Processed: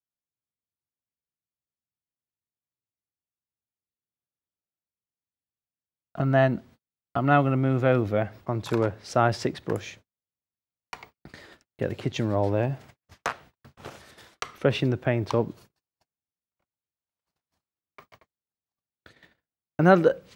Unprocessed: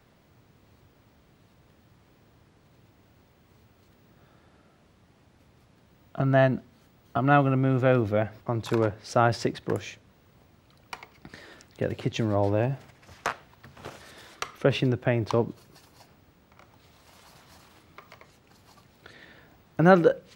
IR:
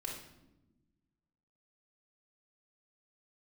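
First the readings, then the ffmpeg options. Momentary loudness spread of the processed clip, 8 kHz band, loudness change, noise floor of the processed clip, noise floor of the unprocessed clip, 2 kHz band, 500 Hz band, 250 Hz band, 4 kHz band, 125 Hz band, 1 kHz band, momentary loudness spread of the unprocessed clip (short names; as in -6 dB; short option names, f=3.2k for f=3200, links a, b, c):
21 LU, 0.0 dB, 0.0 dB, under -85 dBFS, -61 dBFS, 0.0 dB, 0.0 dB, 0.0 dB, 0.0 dB, 0.0 dB, 0.0 dB, 22 LU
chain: -af "agate=range=-45dB:threshold=-48dB:ratio=16:detection=peak"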